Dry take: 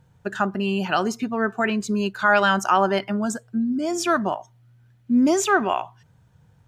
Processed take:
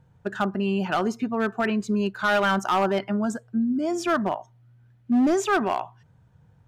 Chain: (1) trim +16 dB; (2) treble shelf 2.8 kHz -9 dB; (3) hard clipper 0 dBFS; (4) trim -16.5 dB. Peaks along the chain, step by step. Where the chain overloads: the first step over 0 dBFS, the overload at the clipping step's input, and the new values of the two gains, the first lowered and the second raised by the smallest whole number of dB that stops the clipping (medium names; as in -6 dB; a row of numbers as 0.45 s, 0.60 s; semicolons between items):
+9.5 dBFS, +8.5 dBFS, 0.0 dBFS, -16.5 dBFS; step 1, 8.5 dB; step 1 +7 dB, step 4 -7.5 dB